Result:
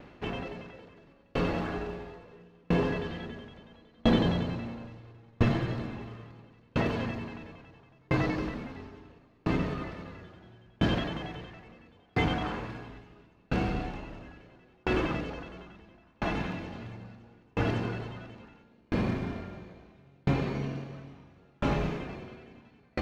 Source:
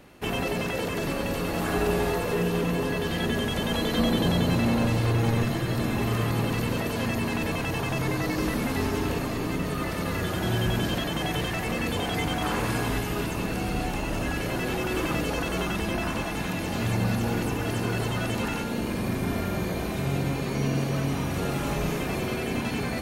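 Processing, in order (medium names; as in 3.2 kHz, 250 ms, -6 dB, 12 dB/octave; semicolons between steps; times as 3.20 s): short-mantissa float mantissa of 2-bit; distance through air 200 m; sawtooth tremolo in dB decaying 0.74 Hz, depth 40 dB; trim +4 dB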